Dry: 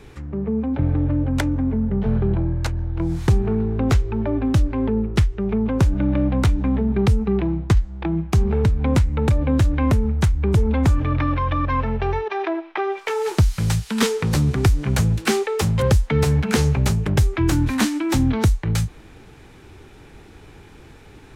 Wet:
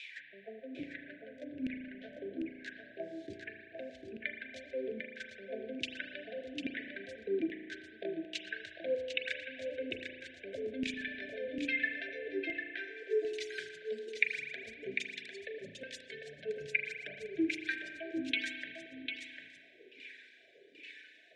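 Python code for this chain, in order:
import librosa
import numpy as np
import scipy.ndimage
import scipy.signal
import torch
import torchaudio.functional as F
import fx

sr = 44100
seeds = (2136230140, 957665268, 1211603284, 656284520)

y = fx.dereverb_blind(x, sr, rt60_s=0.68)
y = fx.weighting(y, sr, curve='ITU-R 468')
y = fx.dereverb_blind(y, sr, rt60_s=0.59)
y = fx.peak_eq(y, sr, hz=3600.0, db=8.5, octaves=0.52)
y = fx.over_compress(y, sr, threshold_db=-24.0, ratio=-0.5)
y = fx.filter_lfo_bandpass(y, sr, shape='saw_down', hz=1.2, low_hz=270.0, high_hz=2700.0, q=6.6)
y = fx.brickwall_bandstop(y, sr, low_hz=710.0, high_hz=1500.0)
y = y + 10.0 ** (-6.5 / 20.0) * np.pad(y, (int(749 * sr / 1000.0), 0))[:len(y)]
y = fx.rev_spring(y, sr, rt60_s=1.8, pass_ms=(35,), chirp_ms=75, drr_db=4.5)
y = y * 10.0 ** (1.0 / 20.0)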